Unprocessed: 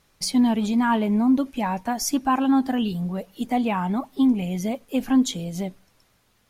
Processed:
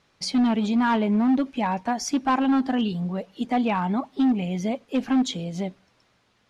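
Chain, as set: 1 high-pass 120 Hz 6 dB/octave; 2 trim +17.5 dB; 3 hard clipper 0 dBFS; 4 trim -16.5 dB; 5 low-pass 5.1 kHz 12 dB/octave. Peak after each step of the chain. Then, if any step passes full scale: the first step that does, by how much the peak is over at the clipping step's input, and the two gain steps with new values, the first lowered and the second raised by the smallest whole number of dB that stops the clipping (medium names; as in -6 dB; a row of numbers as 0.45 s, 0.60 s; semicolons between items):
-11.0 dBFS, +6.5 dBFS, 0.0 dBFS, -16.5 dBFS, -16.0 dBFS; step 2, 6.5 dB; step 2 +10.5 dB, step 4 -9.5 dB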